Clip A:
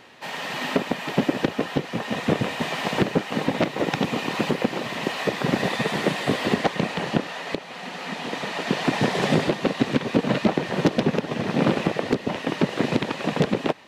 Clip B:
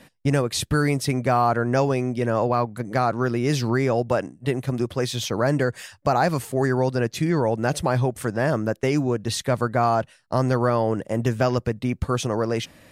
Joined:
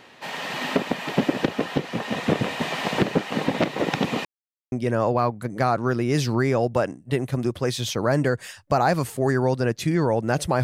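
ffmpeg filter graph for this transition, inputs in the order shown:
-filter_complex "[0:a]apad=whole_dur=10.63,atrim=end=10.63,asplit=2[a][b];[a]atrim=end=4.25,asetpts=PTS-STARTPTS,afade=t=out:st=4.246:d=0.004:c=hsin[c];[b]atrim=start=4.25:end=4.72,asetpts=PTS-STARTPTS,volume=0[d];[1:a]atrim=start=2.07:end=7.98,asetpts=PTS-STARTPTS,afade=t=in:d=0.004:c=hsin[e];[c][d][e]concat=n=3:v=0:a=1"

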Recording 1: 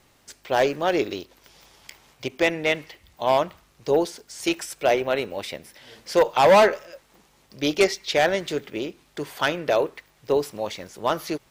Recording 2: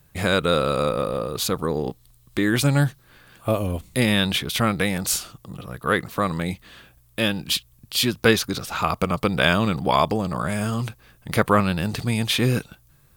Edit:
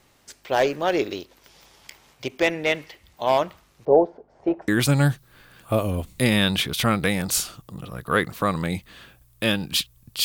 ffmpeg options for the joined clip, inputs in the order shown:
-filter_complex "[0:a]asettb=1/sr,asplit=3[a][b][c];[a]atrim=end=3.854[d];[b]atrim=start=3.85:end=4.68,asetpts=PTS-STARTPTS,afade=t=in:d=0.004:c=qsin,afade=t=out:st=0.826:d=0.004:c=qsin,lowpass=f=710:t=q:w=2.5[e];[c]atrim=start=4.676[f];[d][e]acrossfade=d=0.004:c1=hsin:c2=qsin[g];[g][f]acrossfade=d=0.004:c1=qsin:c2=hsin,apad=whole_dur=10.24,atrim=end=10.24,atrim=end=4.682[h];[1:a]atrim=start=2.438:end=8[i];[h][i]acrossfade=d=0.004:c1=hsin:c2=hsin"

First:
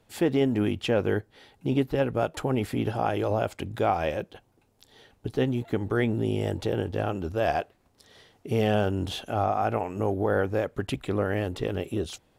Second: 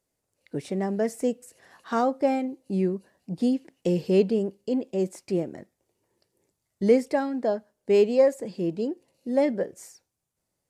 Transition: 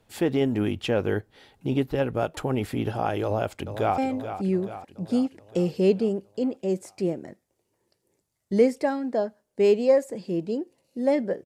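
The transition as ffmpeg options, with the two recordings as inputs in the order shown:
-filter_complex "[0:a]apad=whole_dur=11.45,atrim=end=11.45,atrim=end=3.982[a];[1:a]atrim=start=2.278:end=9.75[b];[a][b]acrossfade=d=0.004:c1=hsin:c2=hsin,asplit=2[c][d];[d]afade=t=in:st=3.23:d=0.01,afade=t=out:st=3.98:d=0.01,aecho=0:1:430|860|1290|1720|2150|2580|3010:0.316228|0.189737|0.113842|0.0683052|0.0409831|0.0245899|0.0147539[e];[c][e]amix=inputs=2:normalize=0"

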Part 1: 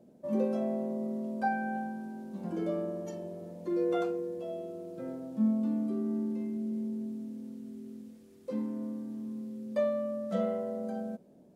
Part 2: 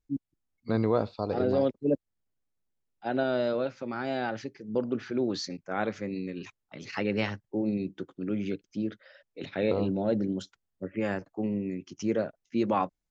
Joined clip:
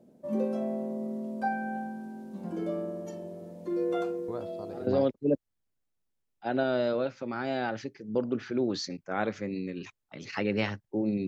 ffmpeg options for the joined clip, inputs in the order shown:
-filter_complex "[1:a]asplit=2[a][b];[0:a]apad=whole_dur=11.27,atrim=end=11.27,atrim=end=4.872[c];[b]atrim=start=1.468:end=7.87[d];[a]atrim=start=0.88:end=1.47,asetpts=PTS-STARTPTS,volume=-12.5dB,afade=t=in:d=0.004:c=hsin,afade=t=out:st=0.586:d=0.004:c=hsin,adelay=4280[e];[c][d]acrossfade=d=0.004:c1=hsin:c2=hsin[f];[f][e]amix=inputs=2:normalize=0"

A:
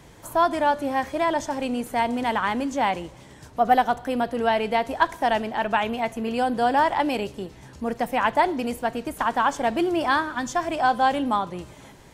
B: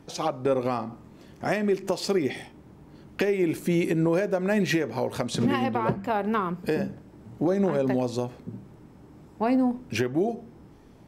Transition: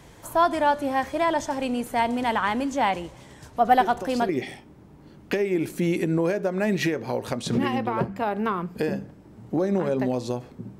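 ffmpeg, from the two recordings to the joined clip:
-filter_complex "[1:a]asplit=2[a][b];[0:a]apad=whole_dur=10.79,atrim=end=10.79,atrim=end=4.292[c];[b]atrim=start=2.168:end=8.67[d];[a]atrim=start=1.68:end=2.17,asetpts=PTS-STARTPTS,volume=-8dB,afade=t=in:d=0.004:c=hsin,afade=t=out:st=0.486:d=0.004:c=hsin,adelay=3800[e];[c][d]acrossfade=d=0.004:c1=hsin:c2=hsin[f];[f][e]amix=inputs=2:normalize=0"

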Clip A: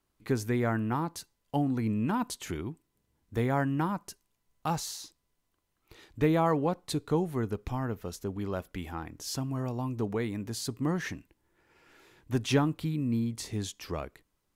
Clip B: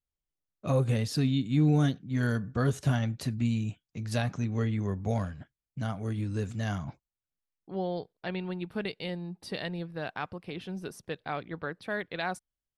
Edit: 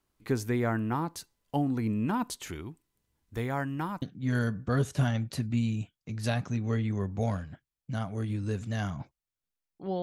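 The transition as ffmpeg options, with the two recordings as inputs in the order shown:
-filter_complex "[0:a]asettb=1/sr,asplit=3[a][b][c];[a]atrim=end=2.484[d];[b]atrim=start=2.48:end=4.02,asetpts=PTS-STARTPTS,afade=t=in:d=0.004:c=qsin,afade=t=out:st=1.536:d=0.004:c=qsin,equalizer=f=310:w=0.31:g=-5[e];[c]atrim=start=4.016[f];[d][e]acrossfade=d=0.004:c1=hsin:c2=qsin[g];[g][f]acrossfade=d=0.004:c1=qsin:c2=hsin,apad=whole_dur=10.02,atrim=end=10.02,atrim=end=4.022[h];[1:a]atrim=start=1.898:end=7.9[i];[h][i]acrossfade=d=0.004:c1=hsin:c2=hsin"

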